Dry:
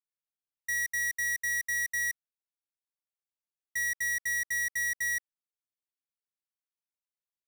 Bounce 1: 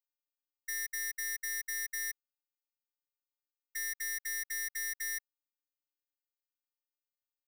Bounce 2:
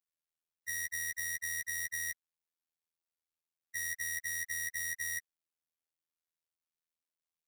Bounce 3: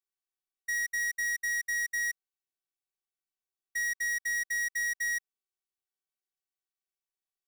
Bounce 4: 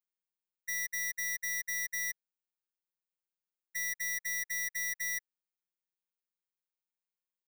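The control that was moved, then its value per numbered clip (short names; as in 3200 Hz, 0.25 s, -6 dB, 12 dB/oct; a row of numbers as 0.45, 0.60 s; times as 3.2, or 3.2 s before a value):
robotiser, frequency: 300, 82, 380, 180 Hz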